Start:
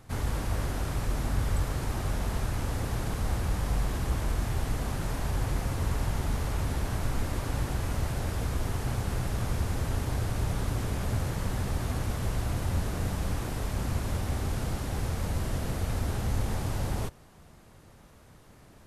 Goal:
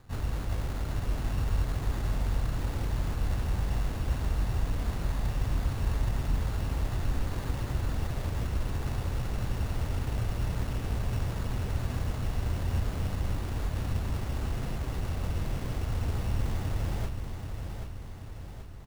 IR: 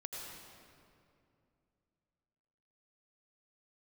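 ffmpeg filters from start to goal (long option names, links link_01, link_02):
-af "lowshelf=frequency=130:gain=5,acrusher=samples=16:mix=1:aa=0.000001,aecho=1:1:781|1562|2343|3124|3905|4686|5467:0.447|0.246|0.135|0.0743|0.0409|0.0225|0.0124,volume=-5dB"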